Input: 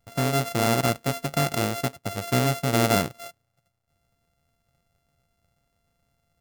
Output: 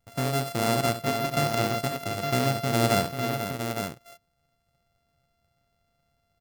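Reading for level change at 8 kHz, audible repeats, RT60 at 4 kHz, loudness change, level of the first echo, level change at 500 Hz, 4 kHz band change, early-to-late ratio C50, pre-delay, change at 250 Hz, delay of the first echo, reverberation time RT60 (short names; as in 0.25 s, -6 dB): -2.5 dB, 3, none, -2.0 dB, -11.0 dB, -0.5 dB, -0.5 dB, none, none, -2.0 dB, 68 ms, none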